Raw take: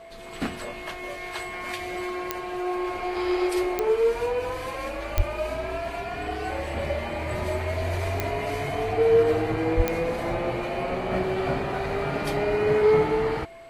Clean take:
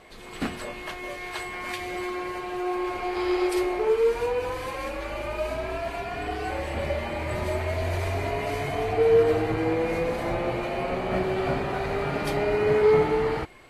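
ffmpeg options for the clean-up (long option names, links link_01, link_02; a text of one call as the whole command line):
ffmpeg -i in.wav -filter_complex "[0:a]adeclick=threshold=4,bandreject=frequency=670:width=30,asplit=3[link_01][link_02][link_03];[link_01]afade=type=out:start_time=5.16:duration=0.02[link_04];[link_02]highpass=frequency=140:width=0.5412,highpass=frequency=140:width=1.3066,afade=type=in:start_time=5.16:duration=0.02,afade=type=out:start_time=5.28:duration=0.02[link_05];[link_03]afade=type=in:start_time=5.28:duration=0.02[link_06];[link_04][link_05][link_06]amix=inputs=3:normalize=0,asplit=3[link_07][link_08][link_09];[link_07]afade=type=out:start_time=9.76:duration=0.02[link_10];[link_08]highpass=frequency=140:width=0.5412,highpass=frequency=140:width=1.3066,afade=type=in:start_time=9.76:duration=0.02,afade=type=out:start_time=9.88:duration=0.02[link_11];[link_09]afade=type=in:start_time=9.88:duration=0.02[link_12];[link_10][link_11][link_12]amix=inputs=3:normalize=0" out.wav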